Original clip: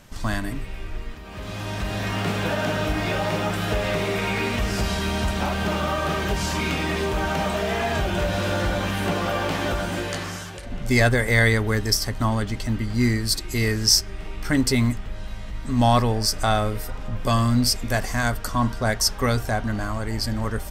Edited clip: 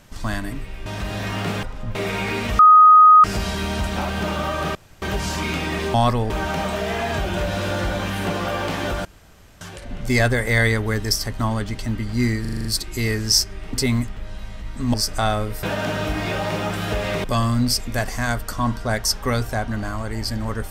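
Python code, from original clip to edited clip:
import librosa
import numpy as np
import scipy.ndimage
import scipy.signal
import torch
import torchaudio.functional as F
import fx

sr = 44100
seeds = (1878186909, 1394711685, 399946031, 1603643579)

y = fx.edit(x, sr, fx.cut(start_s=0.86, length_s=0.8),
    fx.swap(start_s=2.43, length_s=1.61, other_s=16.88, other_length_s=0.32),
    fx.insert_tone(at_s=4.68, length_s=0.65, hz=1250.0, db=-6.0),
    fx.insert_room_tone(at_s=6.19, length_s=0.27),
    fx.room_tone_fill(start_s=9.86, length_s=0.56),
    fx.stutter(start_s=13.22, slice_s=0.04, count=7),
    fx.cut(start_s=14.3, length_s=0.32),
    fx.move(start_s=15.83, length_s=0.36, to_s=7.11), tone=tone)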